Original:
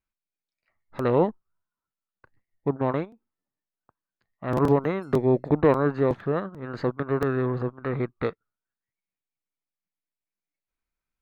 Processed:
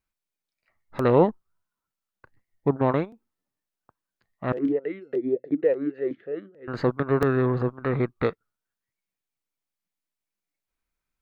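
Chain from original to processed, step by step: 4.52–6.68 s: talking filter e-i 3.4 Hz; trim +3 dB

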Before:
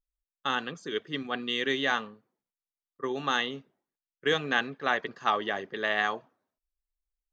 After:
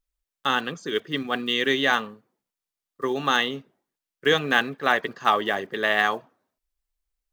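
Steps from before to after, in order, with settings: block-companded coder 7-bit; trim +6 dB

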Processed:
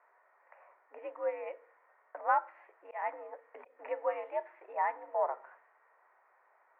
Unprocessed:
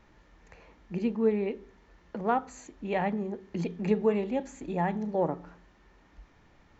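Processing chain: mistuned SSB +80 Hz 540–2100 Hz; level-controlled noise filter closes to 1.6 kHz, open at -31 dBFS; 2.34–3.79 s: slow attack 195 ms

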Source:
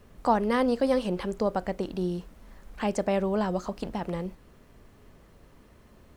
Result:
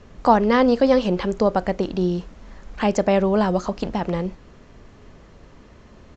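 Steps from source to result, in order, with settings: resampled via 16 kHz; trim +8 dB

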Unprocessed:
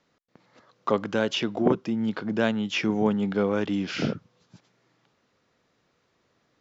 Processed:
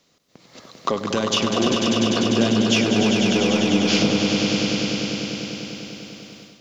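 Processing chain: peaking EQ 1.6 kHz -7 dB 0.84 oct; band-stop 890 Hz, Q 12; in parallel at -3 dB: saturation -19 dBFS, distortion -13 dB; on the sum: treble shelf 2.9 kHz +12 dB; compression, threshold -28 dBFS, peak gain reduction 14 dB; on a send: echo with a slow build-up 99 ms, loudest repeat 5, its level -6 dB; on the sum: level rider gain up to 8 dB

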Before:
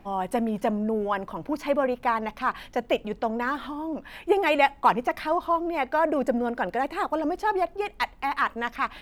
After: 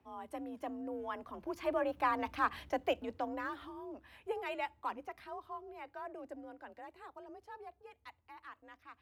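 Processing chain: Doppler pass-by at 2.39 s, 6 m/s, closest 3.3 m; frequency shift +46 Hz; trim -6 dB

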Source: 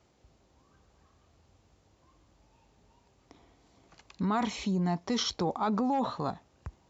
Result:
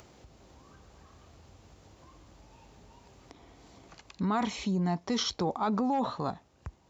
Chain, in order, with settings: upward compressor, threshold -45 dBFS

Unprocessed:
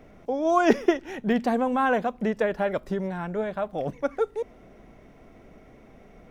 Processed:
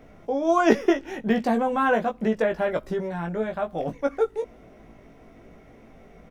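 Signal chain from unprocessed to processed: doubling 18 ms -4.5 dB

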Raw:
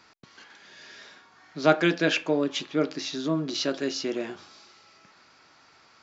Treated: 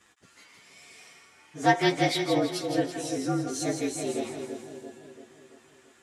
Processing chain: frequency axis rescaled in octaves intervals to 115%; two-band feedback delay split 790 Hz, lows 338 ms, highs 165 ms, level -6.5 dB

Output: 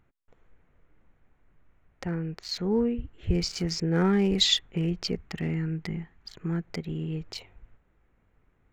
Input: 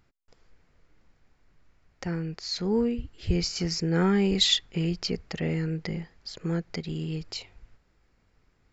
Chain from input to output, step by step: local Wiener filter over 9 samples; 5.15–6.63 s: peaking EQ 530 Hz -11.5 dB 0.52 oct

